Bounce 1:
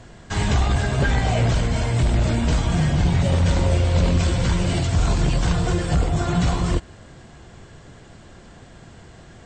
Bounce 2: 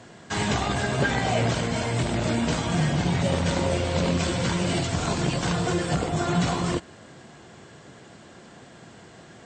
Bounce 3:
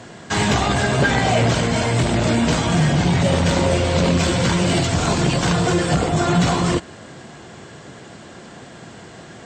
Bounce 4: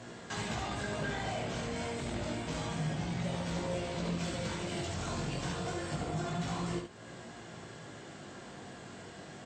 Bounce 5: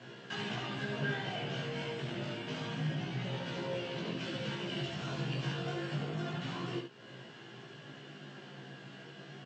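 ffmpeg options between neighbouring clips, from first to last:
-af "highpass=160"
-af "asoftclip=type=tanh:threshold=0.158,volume=2.51"
-af "acompressor=threshold=0.02:ratio=2,flanger=delay=17:depth=4.2:speed=0.28,aecho=1:1:71:0.501,volume=0.501"
-filter_complex "[0:a]acrossover=split=3200[s0][s1];[s0]aeval=exprs='sgn(val(0))*max(abs(val(0))-0.001,0)':c=same[s2];[s2][s1]amix=inputs=2:normalize=0,highpass=f=120:w=0.5412,highpass=f=120:w=1.3066,equalizer=f=140:t=q:w=4:g=10,equalizer=f=240:t=q:w=4:g=4,equalizer=f=380:t=q:w=4:g=5,equalizer=f=1600:t=q:w=4:g=6,equalizer=f=2900:t=q:w=4:g=10,lowpass=f=5600:w=0.5412,lowpass=f=5600:w=1.3066,asplit=2[s3][s4];[s4]adelay=15,volume=0.668[s5];[s3][s5]amix=inputs=2:normalize=0,volume=0.531"

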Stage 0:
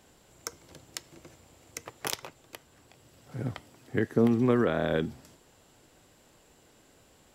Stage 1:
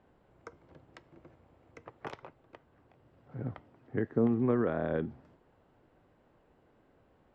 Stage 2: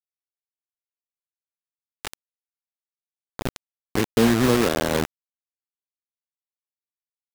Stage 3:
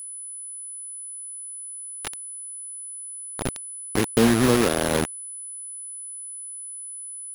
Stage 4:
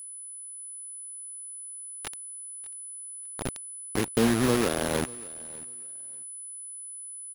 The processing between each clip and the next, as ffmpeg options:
-af "lowpass=1500,volume=0.631"
-af "aeval=exprs='val(0)+0.00398*(sin(2*PI*60*n/s)+sin(2*PI*2*60*n/s)/2+sin(2*PI*3*60*n/s)/3+sin(2*PI*4*60*n/s)/4+sin(2*PI*5*60*n/s)/5)':c=same,acrusher=bits=4:mix=0:aa=0.000001,volume=2.66"
-af "aeval=exprs='val(0)+0.02*sin(2*PI*10000*n/s)':c=same"
-af "aecho=1:1:592|1184:0.0794|0.0151,volume=0.562"

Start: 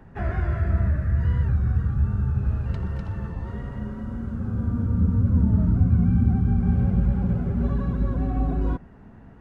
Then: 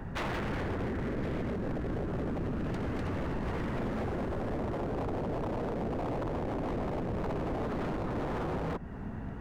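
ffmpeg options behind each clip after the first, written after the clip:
-af "acompressor=threshold=0.0282:ratio=3,aeval=exprs='0.0158*(abs(mod(val(0)/0.0158+3,4)-2)-1)':c=same,volume=2.37"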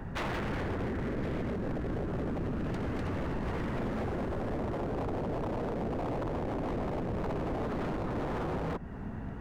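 -af anull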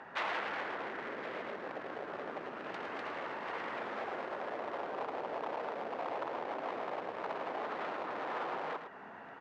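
-af "highpass=710,lowpass=3900,aecho=1:1:109:0.376,volume=1.26"

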